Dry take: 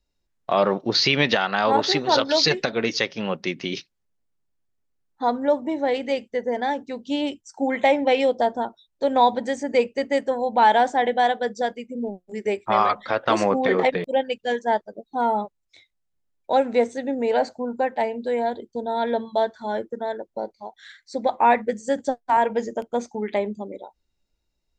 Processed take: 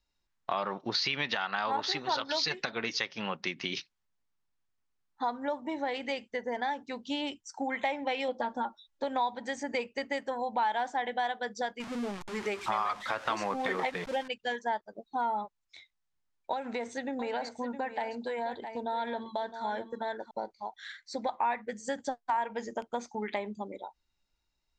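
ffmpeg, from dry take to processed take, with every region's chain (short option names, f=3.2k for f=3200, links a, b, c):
-filter_complex "[0:a]asettb=1/sr,asplit=3[a][b][c];[a]atrim=end=8.284[d];[b]atrim=start=8.28:end=9.04,asetpts=PTS-STARTPTS,afade=t=in:d=0.004:c=qsin,afade=t=out:st=0.756:d=0.004:c=qsin,acrossover=split=3500[e][f];[f]acompressor=threshold=-59dB:ratio=4:attack=1:release=60[g];[e][g]amix=inputs=2:normalize=0,aecho=1:1:3.6:0.85,atrim=end_sample=33516[h];[c]atrim=start=9.036[i];[d][h]acrossfade=d=0.004:c1=hsin:c2=qsin[j];[j][i]acrossfade=d=0.004:c1=qsin:c2=hsin,asettb=1/sr,asplit=3[k][l][m];[k]atrim=end=11.804[n];[l]atrim=start=11.8:end=14.28,asetpts=PTS-STARTPTS,afade=t=in:d=0.004:c=qsin,afade=t=out:st=2.476:d=0.004:c=qsin,aeval=exprs='val(0)+0.5*0.0237*sgn(val(0))':c=same,acompressor=mode=upward:threshold=-38dB:ratio=2.5:attack=3.2:release=140:knee=2.83:detection=peak,acrusher=bits=8:mode=log:mix=0:aa=0.000001[o];[m]atrim=start=14.276[p];[n][o]acrossfade=d=0.004:c1=hsin:c2=qsin[q];[q][p]acrossfade=d=0.004:c1=qsin:c2=hsin,asettb=1/sr,asplit=3[r][s][t];[r]atrim=end=16.534[u];[s]atrim=start=16.53:end=20.31,asetpts=PTS-STARTPTS,afade=t=in:d=0.004:c=qsin,afade=t=out:st=3.776:d=0.004:c=qsin,acompressor=threshold=-22dB:ratio=4:attack=3.2:release=140:knee=1:detection=peak,aecho=1:1:662:0.251,atrim=end_sample=166698[v];[t]atrim=start=20.306[w];[u][v]acrossfade=d=0.004:c1=hsin:c2=qsin[x];[x][w]acrossfade=d=0.004:c1=qsin:c2=hsin,lowpass=7.2k,lowshelf=f=720:t=q:w=1.5:g=-6,acompressor=threshold=-31dB:ratio=3"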